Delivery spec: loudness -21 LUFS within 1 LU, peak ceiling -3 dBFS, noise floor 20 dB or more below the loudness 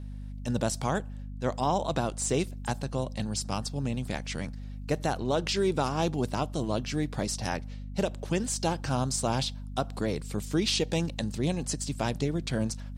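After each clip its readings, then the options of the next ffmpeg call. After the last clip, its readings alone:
hum 50 Hz; harmonics up to 250 Hz; hum level -36 dBFS; loudness -30.5 LUFS; peak -15.0 dBFS; loudness target -21.0 LUFS
-> -af "bandreject=f=50:t=h:w=6,bandreject=f=100:t=h:w=6,bandreject=f=150:t=h:w=6,bandreject=f=200:t=h:w=6,bandreject=f=250:t=h:w=6"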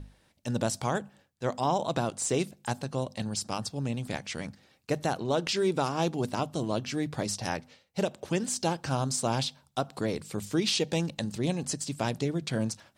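hum none; loudness -31.0 LUFS; peak -15.0 dBFS; loudness target -21.0 LUFS
-> -af "volume=10dB"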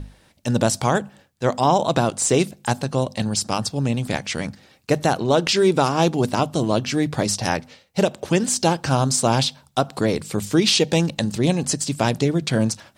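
loudness -21.0 LUFS; peak -5.0 dBFS; noise floor -57 dBFS

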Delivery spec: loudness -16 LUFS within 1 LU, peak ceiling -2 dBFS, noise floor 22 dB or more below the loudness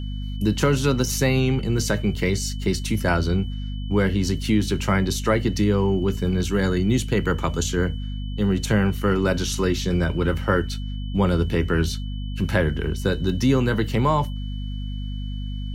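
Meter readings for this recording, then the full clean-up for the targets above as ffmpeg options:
hum 50 Hz; harmonics up to 250 Hz; hum level -26 dBFS; steady tone 3000 Hz; tone level -44 dBFS; loudness -23.0 LUFS; peak -5.0 dBFS; loudness target -16.0 LUFS
-> -af "bandreject=f=50:t=h:w=4,bandreject=f=100:t=h:w=4,bandreject=f=150:t=h:w=4,bandreject=f=200:t=h:w=4,bandreject=f=250:t=h:w=4"
-af "bandreject=f=3k:w=30"
-af "volume=7dB,alimiter=limit=-2dB:level=0:latency=1"

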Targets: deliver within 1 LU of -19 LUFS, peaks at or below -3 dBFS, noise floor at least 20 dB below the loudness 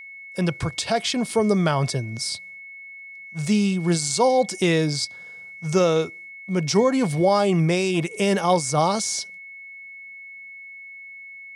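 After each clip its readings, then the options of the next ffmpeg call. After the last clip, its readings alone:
steady tone 2200 Hz; tone level -38 dBFS; loudness -22.0 LUFS; peak -7.0 dBFS; loudness target -19.0 LUFS
-> -af "bandreject=f=2.2k:w=30"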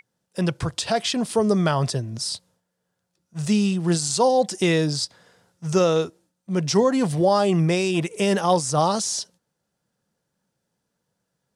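steady tone none; loudness -22.0 LUFS; peak -7.0 dBFS; loudness target -19.0 LUFS
-> -af "volume=3dB"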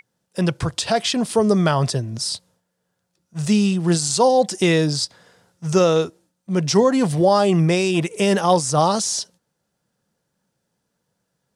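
loudness -19.0 LUFS; peak -4.0 dBFS; noise floor -75 dBFS

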